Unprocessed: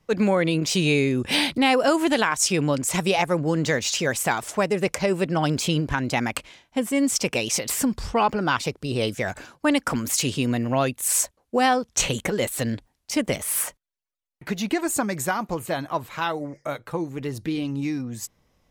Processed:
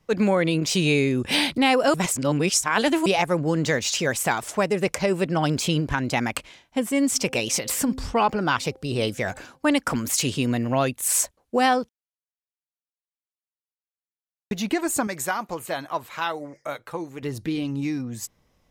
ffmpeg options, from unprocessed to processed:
-filter_complex "[0:a]asplit=3[a][b][c];[a]afade=t=out:st=7.14:d=0.02[d];[b]bandreject=f=261:t=h:w=4,bandreject=f=522:t=h:w=4,bandreject=f=783:t=h:w=4,afade=t=in:st=7.14:d=0.02,afade=t=out:st=9.66:d=0.02[e];[c]afade=t=in:st=9.66:d=0.02[f];[d][e][f]amix=inputs=3:normalize=0,asettb=1/sr,asplit=3[g][h][i];[g]atrim=end=15.074[j];[h]atrim=start=15.07:end=17.23,asetpts=PTS-STARTPTS,afade=t=in:d=0.004:c=qsin,afade=t=out:st=2.156:d=0.004:c=qsin,lowshelf=f=290:g=-10.5[k];[i]atrim=start=17.226[l];[j][k]acrossfade=d=0.004:c1=hsin:c2=qsin[m];[m][l]acrossfade=d=0.004:c1=qsin:c2=hsin,asplit=5[n][o][p][q][r];[n]atrim=end=1.942[s];[o]atrim=start=1.938:end=3.062,asetpts=PTS-STARTPTS,areverse[t];[p]atrim=start=3.058:end=11.89,asetpts=PTS-STARTPTS,afade=t=out:st=8.828:d=0.004:c=hsin[u];[q]atrim=start=11.89:end=14.51,asetpts=PTS-STARTPTS,volume=0[v];[r]atrim=start=14.51,asetpts=PTS-STARTPTS,afade=t=in:d=0.004:c=hsin[w];[s][t]acrossfade=d=0.004:c1=hsin:c2=hsin[x];[u][v][w]concat=n=3:v=0:a=1[y];[x][y]acrossfade=d=0.004:c1=hsin:c2=hsin"

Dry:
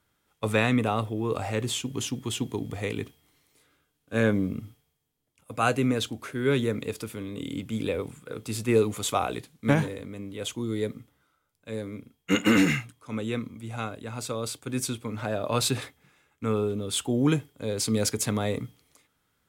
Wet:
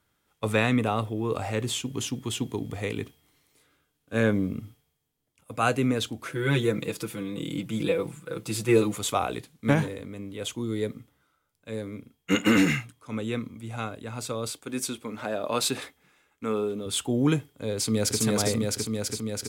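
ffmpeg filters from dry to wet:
-filter_complex "[0:a]asettb=1/sr,asplit=3[a][b][c];[a]atrim=end=6.254[d];[b]atrim=start=6.25:end=8.96,asetpts=PTS-STARTPTS,afade=t=in:d=0.004:c=qsin,afade=t=out:st=2.706:d=0.004:c=qsin,aecho=1:1:6:0.95,atrim=end_sample=119511[e];[c]atrim=start=8.956[f];[d][e]acrossfade=d=0.004:c1=hsin:c2=qsin[g];[g][f]acrossfade=d=0.004:c1=qsin:c2=hsin,asettb=1/sr,asplit=3[h][i][j];[h]atrim=end=14.504[k];[i]atrim=start=14.5:end=16.86,asetpts=PTS-STARTPTS,afade=t=in:d=0.004:c=qsin,afade=t=out:st=2.356:d=0.004:c=qsin,equalizer=f=110:t=o:w=0.77:g=-13.5[l];[j]atrim=start=16.856[m];[k][l]acrossfade=d=0.004:c1=hsin:c2=qsin[n];[n][m]acrossfade=d=0.004:c1=qsin:c2=hsin,asplit=2[o][p];[p]afade=t=in:st=17.77:d=0.01,afade=t=out:st=18.2:d=0.01,aecho=0:1:330|660|990|1320|1650|1980|2310|2640|2970|3300|3630|3960:0.891251|0.713001|0.570401|0.45632|0.365056|0.292045|0.233636|0.186909|0.149527|0.119622|0.0956973|0.0765579[q];[o][q]amix=inputs=2:normalize=0"

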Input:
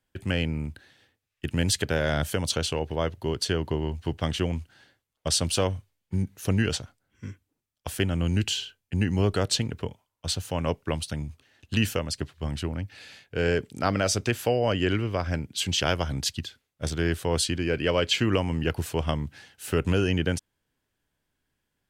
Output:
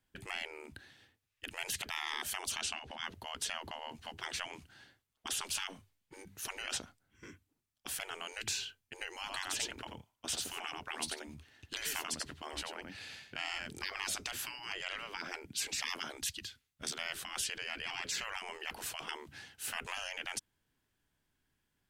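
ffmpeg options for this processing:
-filter_complex "[0:a]asettb=1/sr,asplit=3[a][b][c];[a]atrim=end=2.614[d];[b]atrim=start=2.61:end=3.04,asetpts=PTS-STARTPTS,afade=t=in:d=0.004:c=qsin,afade=t=out:st=0.426:d=0.004:c=qsin,lowpass=8.8k[e];[c]atrim=start=3.036[f];[d][e]acrossfade=d=0.004:c1=hsin:c2=qsin[g];[g][f]acrossfade=d=0.004:c1=qsin:c2=hsin,asettb=1/sr,asplit=3[h][i][j];[h]atrim=end=9.174[k];[i]atrim=start=9.17:end=13.85,asetpts=PTS-STARTPTS,afade=t=in:d=0.004:c=qsin,afade=t=out:st=4.676:d=0.004:c=qsin,aecho=1:1:88:0.447,atrim=end_sample=206388[l];[j]atrim=start=13.846[m];[k][l]acrossfade=d=0.004:c1=hsin:c2=qsin[n];[n][m]acrossfade=d=0.004:c1=qsin:c2=hsin,asettb=1/sr,asplit=3[o][p][q];[o]atrim=end=16.174[r];[p]atrim=start=16.17:end=16.92,asetpts=PTS-STARTPTS,afade=t=in:d=0.004:c=qsin,afade=t=out:st=0.746:d=0.004:c=qsin,equalizer=f=530:t=o:w=2.5:g=-8.5[s];[q]atrim=start=16.916[t];[r][s]acrossfade=d=0.004:c1=hsin:c2=qsin[u];[u][t]acrossfade=d=0.004:c1=qsin:c2=hsin,afftfilt=real='re*lt(hypot(re,im),0.0631)':imag='im*lt(hypot(re,im),0.0631)':win_size=1024:overlap=0.75,equalizer=f=530:t=o:w=0.56:g=-5,volume=-1.5dB"

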